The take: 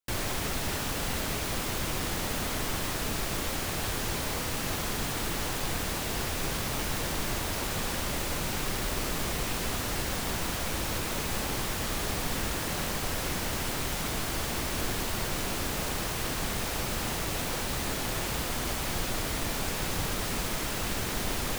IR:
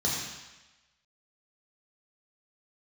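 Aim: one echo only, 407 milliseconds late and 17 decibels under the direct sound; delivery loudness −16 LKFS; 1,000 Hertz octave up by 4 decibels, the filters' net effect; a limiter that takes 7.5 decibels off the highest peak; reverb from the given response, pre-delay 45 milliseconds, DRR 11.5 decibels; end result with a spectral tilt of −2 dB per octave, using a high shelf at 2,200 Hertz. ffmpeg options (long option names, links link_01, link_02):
-filter_complex "[0:a]equalizer=frequency=1000:width_type=o:gain=3.5,highshelf=frequency=2200:gain=7,alimiter=limit=-22dB:level=0:latency=1,aecho=1:1:407:0.141,asplit=2[link_01][link_02];[1:a]atrim=start_sample=2205,adelay=45[link_03];[link_02][link_03]afir=irnorm=-1:irlink=0,volume=-20.5dB[link_04];[link_01][link_04]amix=inputs=2:normalize=0,volume=13.5dB"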